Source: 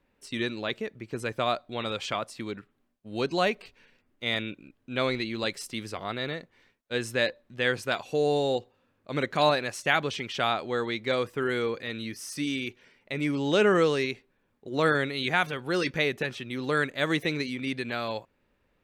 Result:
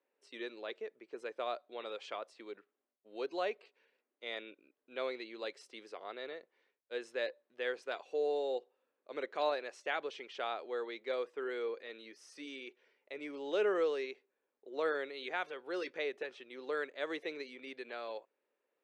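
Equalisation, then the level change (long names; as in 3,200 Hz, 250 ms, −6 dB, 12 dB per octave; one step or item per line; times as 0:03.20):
four-pole ladder high-pass 350 Hz, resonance 40%
high-frequency loss of the air 82 metres
−4.5 dB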